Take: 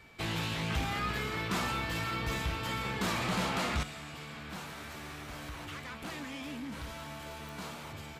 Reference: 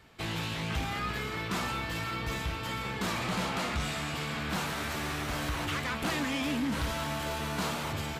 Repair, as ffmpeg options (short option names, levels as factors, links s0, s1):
-af "adeclick=t=4,bandreject=f=2300:w=30,asetnsamples=n=441:p=0,asendcmd='3.83 volume volume 10dB',volume=1"